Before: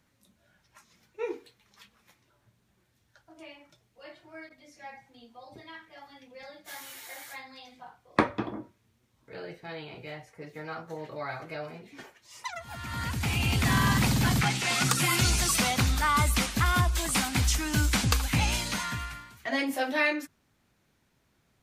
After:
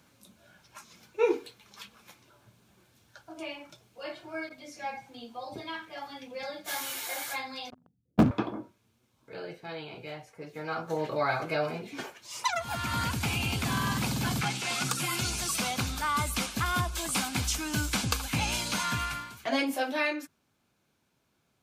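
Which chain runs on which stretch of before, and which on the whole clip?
0:07.70–0:08.31: inverse Chebyshev low-pass filter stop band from 1,100 Hz, stop band 70 dB + leveller curve on the samples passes 5
whole clip: high-pass filter 130 Hz 6 dB per octave; notch filter 1,900 Hz, Q 6.7; speech leveller 0.5 s; level −1 dB

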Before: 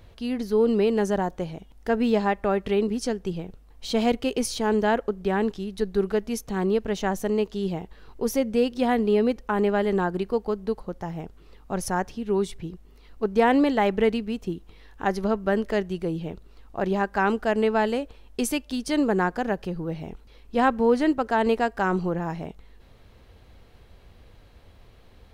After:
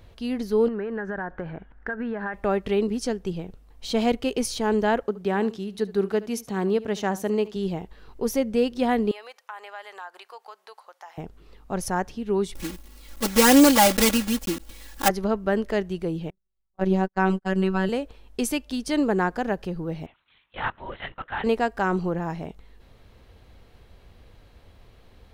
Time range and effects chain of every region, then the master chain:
0:00.68–0:02.34: low-pass with resonance 1,600 Hz, resonance Q 7.5 + downward compressor 10 to 1, threshold −26 dBFS
0:05.03–0:07.56: high-pass filter 110 Hz + single-tap delay 72 ms −18.5 dB
0:09.11–0:11.18: high-pass filter 780 Hz 24 dB per octave + downward compressor 2 to 1, threshold −41 dBFS
0:12.55–0:15.10: one scale factor per block 3 bits + high-shelf EQ 4,300 Hz +8.5 dB + comb filter 3.6 ms, depth 100%
0:16.30–0:17.89: low-shelf EQ 200 Hz +10 dB + noise gate −26 dBFS, range −39 dB + phases set to zero 189 Hz
0:20.06–0:21.44: high-pass filter 1,400 Hz + linear-prediction vocoder at 8 kHz whisper
whole clip: no processing

